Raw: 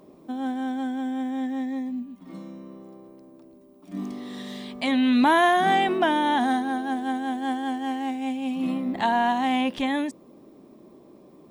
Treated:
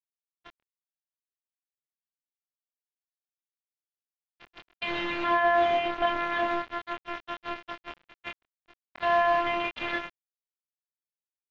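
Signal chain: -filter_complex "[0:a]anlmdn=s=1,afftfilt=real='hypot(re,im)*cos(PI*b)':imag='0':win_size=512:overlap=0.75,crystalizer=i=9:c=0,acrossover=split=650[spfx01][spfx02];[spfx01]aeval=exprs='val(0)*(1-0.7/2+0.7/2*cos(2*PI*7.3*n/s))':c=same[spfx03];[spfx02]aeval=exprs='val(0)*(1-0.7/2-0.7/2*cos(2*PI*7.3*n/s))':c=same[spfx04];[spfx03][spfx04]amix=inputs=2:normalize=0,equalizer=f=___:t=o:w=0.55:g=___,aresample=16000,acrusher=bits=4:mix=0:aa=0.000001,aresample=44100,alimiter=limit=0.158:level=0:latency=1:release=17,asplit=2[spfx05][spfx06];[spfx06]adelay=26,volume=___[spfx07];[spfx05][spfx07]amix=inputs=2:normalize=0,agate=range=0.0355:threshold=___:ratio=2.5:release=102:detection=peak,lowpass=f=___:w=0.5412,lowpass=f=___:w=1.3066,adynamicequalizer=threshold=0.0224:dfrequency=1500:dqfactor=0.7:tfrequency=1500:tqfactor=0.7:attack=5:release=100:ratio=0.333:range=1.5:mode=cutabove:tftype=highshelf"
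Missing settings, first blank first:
350, -9.5, 0.708, 0.0141, 3k, 3k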